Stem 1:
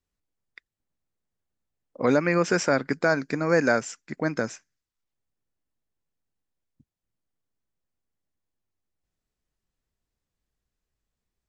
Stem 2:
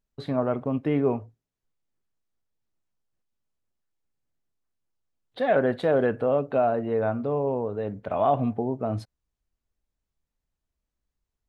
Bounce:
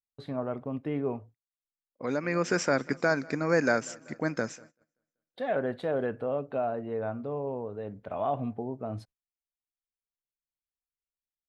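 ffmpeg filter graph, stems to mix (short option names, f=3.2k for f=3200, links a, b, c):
-filter_complex "[0:a]volume=-3.5dB,asplit=2[a][b];[b]volume=-23.5dB[c];[1:a]volume=-7.5dB,asplit=2[d][e];[e]apad=whole_len=506492[f];[a][f]sidechaincompress=threshold=-52dB:ratio=5:attack=9.4:release=808[g];[c]aecho=0:1:192|384|576|768|960|1152|1344|1536|1728:1|0.59|0.348|0.205|0.121|0.0715|0.0422|0.0249|0.0147[h];[g][d][h]amix=inputs=3:normalize=0,agate=range=-23dB:threshold=-52dB:ratio=16:detection=peak"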